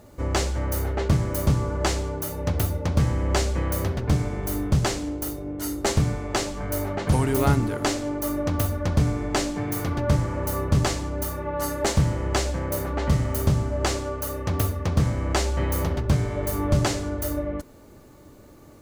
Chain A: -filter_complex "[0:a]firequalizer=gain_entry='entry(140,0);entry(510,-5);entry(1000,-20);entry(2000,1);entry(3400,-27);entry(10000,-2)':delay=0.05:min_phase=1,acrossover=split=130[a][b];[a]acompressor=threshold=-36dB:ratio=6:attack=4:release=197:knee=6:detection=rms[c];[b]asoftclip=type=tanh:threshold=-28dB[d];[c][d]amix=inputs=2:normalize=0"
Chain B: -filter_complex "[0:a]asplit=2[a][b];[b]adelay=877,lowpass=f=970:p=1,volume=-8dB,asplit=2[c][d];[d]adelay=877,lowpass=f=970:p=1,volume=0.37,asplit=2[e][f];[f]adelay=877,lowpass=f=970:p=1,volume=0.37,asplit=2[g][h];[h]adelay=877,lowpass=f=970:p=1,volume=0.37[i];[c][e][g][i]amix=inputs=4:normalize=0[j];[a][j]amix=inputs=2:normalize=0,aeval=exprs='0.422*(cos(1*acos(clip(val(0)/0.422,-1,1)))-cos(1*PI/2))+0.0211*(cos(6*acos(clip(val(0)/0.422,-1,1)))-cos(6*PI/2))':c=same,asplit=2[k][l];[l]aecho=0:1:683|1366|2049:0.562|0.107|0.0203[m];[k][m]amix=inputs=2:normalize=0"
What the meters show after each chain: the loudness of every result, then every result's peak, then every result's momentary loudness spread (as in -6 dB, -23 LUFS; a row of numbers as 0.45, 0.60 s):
-33.0, -23.5 LUFS; -23.0, -7.5 dBFS; 3, 4 LU